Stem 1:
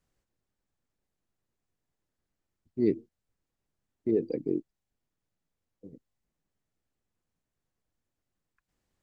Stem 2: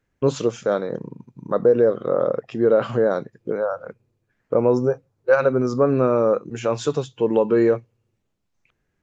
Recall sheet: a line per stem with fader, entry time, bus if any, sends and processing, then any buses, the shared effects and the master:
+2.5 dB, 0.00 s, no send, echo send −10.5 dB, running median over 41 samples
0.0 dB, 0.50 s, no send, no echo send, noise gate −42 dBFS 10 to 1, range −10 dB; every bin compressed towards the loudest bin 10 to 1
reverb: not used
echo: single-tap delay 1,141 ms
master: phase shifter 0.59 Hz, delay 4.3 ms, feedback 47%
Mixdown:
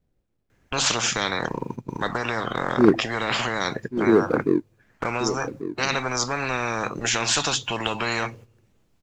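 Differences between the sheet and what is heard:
stem 1 +2.5 dB → +9.5 dB
master: missing phase shifter 0.59 Hz, delay 4.3 ms, feedback 47%

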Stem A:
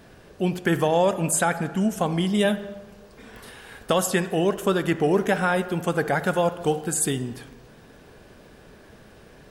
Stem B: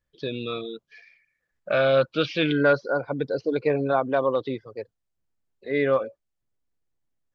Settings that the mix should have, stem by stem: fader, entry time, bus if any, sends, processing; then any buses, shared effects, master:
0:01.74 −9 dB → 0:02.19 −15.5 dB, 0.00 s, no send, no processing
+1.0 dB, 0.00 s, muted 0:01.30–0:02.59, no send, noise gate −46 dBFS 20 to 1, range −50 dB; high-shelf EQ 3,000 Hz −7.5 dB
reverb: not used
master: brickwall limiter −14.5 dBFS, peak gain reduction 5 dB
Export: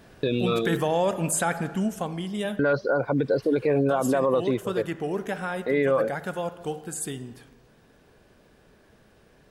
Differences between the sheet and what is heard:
stem A −9.0 dB → −2.0 dB
stem B +1.0 dB → +8.0 dB

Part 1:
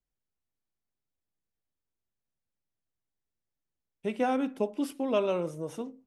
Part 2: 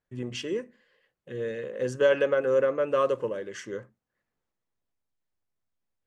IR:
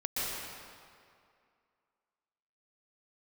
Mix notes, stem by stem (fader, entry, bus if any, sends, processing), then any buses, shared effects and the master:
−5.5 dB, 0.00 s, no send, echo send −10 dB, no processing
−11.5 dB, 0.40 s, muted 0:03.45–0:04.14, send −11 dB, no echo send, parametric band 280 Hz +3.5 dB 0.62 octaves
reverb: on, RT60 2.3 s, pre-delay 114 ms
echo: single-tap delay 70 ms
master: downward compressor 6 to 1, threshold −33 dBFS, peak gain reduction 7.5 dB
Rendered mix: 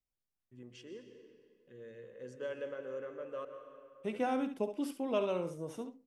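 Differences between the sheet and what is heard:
stem 2 −11.5 dB → −21.0 dB
master: missing downward compressor 6 to 1, threshold −33 dBFS, peak gain reduction 7.5 dB

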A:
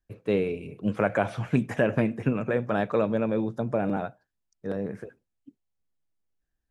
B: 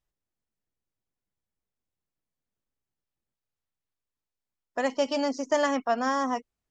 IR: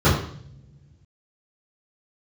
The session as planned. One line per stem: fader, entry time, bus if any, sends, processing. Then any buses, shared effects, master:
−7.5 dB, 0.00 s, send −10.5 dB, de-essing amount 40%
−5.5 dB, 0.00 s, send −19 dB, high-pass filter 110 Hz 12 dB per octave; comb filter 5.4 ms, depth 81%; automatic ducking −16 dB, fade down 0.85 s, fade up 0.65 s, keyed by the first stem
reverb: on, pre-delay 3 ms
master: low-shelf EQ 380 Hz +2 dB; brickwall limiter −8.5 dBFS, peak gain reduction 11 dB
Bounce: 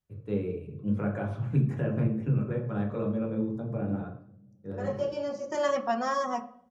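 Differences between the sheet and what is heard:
stem A −7.5 dB → −16.0 dB
reverb return −9.0 dB

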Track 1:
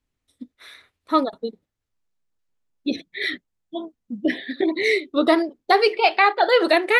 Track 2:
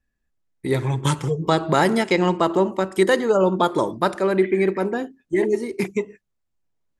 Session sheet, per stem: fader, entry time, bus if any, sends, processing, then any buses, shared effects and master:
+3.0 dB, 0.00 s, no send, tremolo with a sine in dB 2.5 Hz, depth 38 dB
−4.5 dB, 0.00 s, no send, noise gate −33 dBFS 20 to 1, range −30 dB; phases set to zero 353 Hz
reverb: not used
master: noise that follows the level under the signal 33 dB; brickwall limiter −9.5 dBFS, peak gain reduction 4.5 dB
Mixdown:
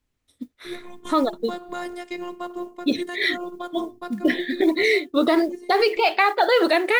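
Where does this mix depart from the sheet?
stem 1: missing tremolo with a sine in dB 2.5 Hz, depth 38 dB
stem 2 −4.5 dB → −11.5 dB

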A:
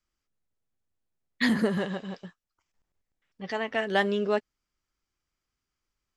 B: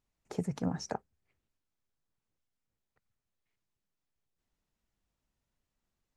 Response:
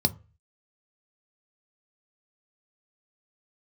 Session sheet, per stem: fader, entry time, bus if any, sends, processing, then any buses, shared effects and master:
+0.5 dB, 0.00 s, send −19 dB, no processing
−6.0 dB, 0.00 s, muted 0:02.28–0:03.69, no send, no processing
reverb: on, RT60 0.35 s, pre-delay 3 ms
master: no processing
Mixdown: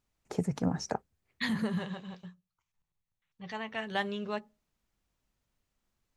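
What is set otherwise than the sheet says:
stem A +0.5 dB → −6.0 dB
stem B −6.0 dB → +3.0 dB

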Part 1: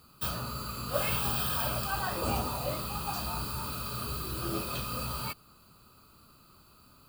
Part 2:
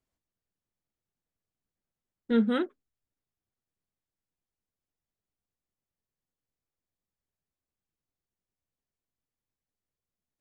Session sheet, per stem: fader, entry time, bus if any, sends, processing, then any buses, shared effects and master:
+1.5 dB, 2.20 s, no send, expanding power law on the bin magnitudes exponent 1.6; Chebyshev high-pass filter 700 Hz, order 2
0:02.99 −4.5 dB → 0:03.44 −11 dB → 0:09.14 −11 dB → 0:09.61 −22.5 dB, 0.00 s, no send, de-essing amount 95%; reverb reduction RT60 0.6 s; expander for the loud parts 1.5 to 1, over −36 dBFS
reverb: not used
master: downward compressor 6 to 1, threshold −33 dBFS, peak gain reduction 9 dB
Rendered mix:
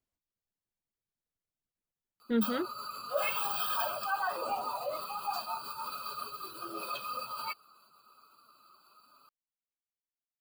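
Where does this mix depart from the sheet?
stem 2: missing expander for the loud parts 1.5 to 1, over −36 dBFS
master: missing downward compressor 6 to 1, threshold −33 dBFS, peak gain reduction 9 dB

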